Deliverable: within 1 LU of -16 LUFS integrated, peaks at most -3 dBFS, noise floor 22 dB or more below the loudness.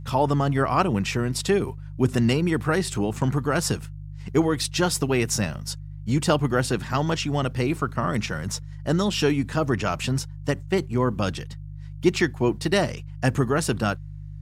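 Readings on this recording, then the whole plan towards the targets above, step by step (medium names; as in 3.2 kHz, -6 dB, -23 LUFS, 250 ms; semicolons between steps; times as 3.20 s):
hum 50 Hz; highest harmonic 150 Hz; hum level -35 dBFS; loudness -24.5 LUFS; peak level -7.0 dBFS; loudness target -16.0 LUFS
-> de-hum 50 Hz, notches 3; trim +8.5 dB; peak limiter -3 dBFS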